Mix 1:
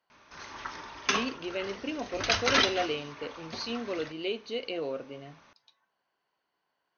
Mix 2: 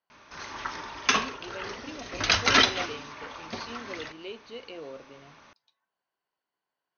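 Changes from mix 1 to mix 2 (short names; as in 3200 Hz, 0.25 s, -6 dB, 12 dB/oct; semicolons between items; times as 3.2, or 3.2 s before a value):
speech -7.5 dB; background +4.5 dB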